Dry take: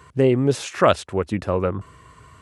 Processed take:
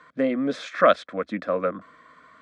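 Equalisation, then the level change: HPF 230 Hz 12 dB/oct; synth low-pass 3100 Hz, resonance Q 5.2; fixed phaser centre 580 Hz, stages 8; 0.0 dB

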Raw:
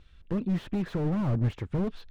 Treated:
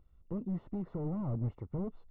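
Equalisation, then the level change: polynomial smoothing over 65 samples; -8.0 dB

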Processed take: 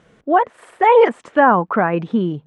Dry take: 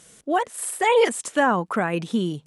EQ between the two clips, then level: LPF 1800 Hz 12 dB/oct; dynamic EQ 960 Hz, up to +4 dB, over -29 dBFS, Q 0.82; +5.0 dB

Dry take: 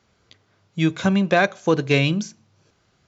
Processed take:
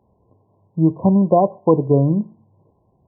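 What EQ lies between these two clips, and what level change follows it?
brick-wall FIR low-pass 1100 Hz; +4.5 dB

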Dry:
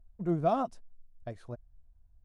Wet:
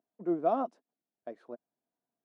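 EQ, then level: HPF 260 Hz 24 dB/oct; band-pass 410 Hz, Q 0.54; bell 630 Hz -4 dB 2.7 oct; +5.0 dB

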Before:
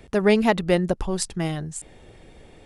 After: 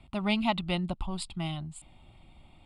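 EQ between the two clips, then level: LPF 9100 Hz 24 dB/oct; dynamic EQ 3700 Hz, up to +6 dB, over -44 dBFS, Q 1.3; fixed phaser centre 1700 Hz, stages 6; -5.0 dB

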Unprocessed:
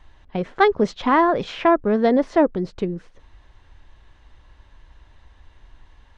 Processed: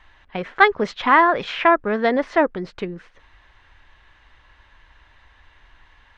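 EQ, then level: bell 1900 Hz +14 dB 2.6 oct; -6.0 dB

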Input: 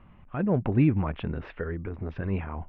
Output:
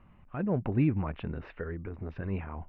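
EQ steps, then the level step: notch 3300 Hz, Q 13; -4.5 dB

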